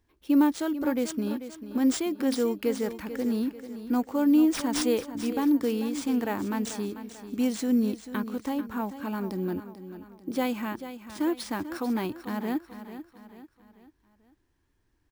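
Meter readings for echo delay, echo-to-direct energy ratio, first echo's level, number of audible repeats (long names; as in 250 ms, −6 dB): 441 ms, −11.0 dB, −12.0 dB, 4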